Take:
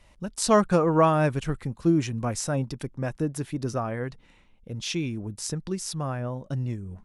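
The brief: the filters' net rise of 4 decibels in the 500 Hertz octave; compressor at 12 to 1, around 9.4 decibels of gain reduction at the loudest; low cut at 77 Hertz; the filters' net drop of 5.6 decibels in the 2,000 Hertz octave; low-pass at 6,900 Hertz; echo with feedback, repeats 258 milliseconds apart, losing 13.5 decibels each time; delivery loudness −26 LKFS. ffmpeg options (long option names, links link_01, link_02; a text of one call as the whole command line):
ffmpeg -i in.wav -af "highpass=77,lowpass=6900,equalizer=frequency=500:width_type=o:gain=5.5,equalizer=frequency=2000:width_type=o:gain=-8.5,acompressor=threshold=-21dB:ratio=12,aecho=1:1:258|516:0.211|0.0444,volume=3.5dB" out.wav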